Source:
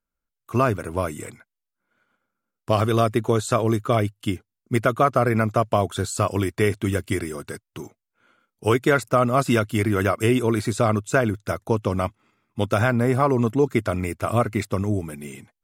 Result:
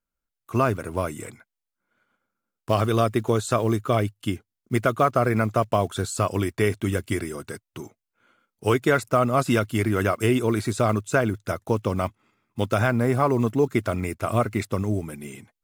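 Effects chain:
one scale factor per block 7 bits
level −1.5 dB

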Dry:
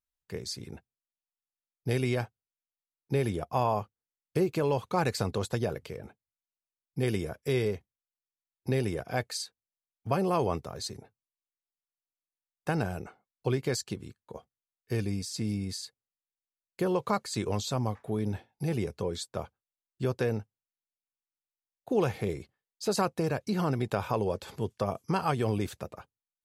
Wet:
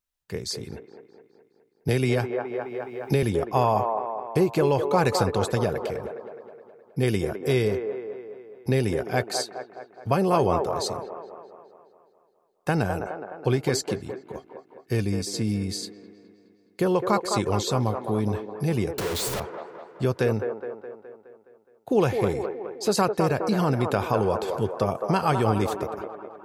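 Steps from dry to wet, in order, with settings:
0:18.98–0:19.40: sign of each sample alone
delay with a band-pass on its return 209 ms, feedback 56%, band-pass 730 Hz, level −4 dB
0:01.88–0:03.23: multiband upward and downward compressor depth 70%
level +5.5 dB

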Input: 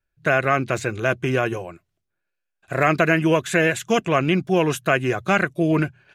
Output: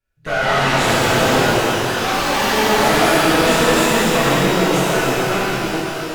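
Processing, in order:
fade-out on the ending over 1.55 s
notch filter 1,600 Hz
in parallel at +2.5 dB: brickwall limiter −14 dBFS, peak gain reduction 9.5 dB
on the sum: delay with pitch and tempo change per echo 226 ms, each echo +5 semitones, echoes 3
tube saturation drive 16 dB, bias 0.7
reverb with rising layers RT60 3.1 s, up +12 semitones, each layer −8 dB, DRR −11 dB
level −6 dB

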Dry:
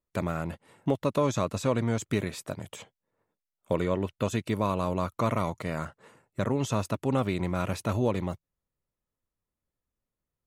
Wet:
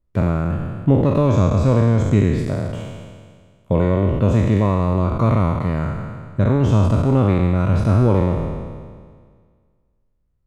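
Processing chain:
peak hold with a decay on every bin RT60 1.82 s
RIAA equalisation playback
level +2 dB

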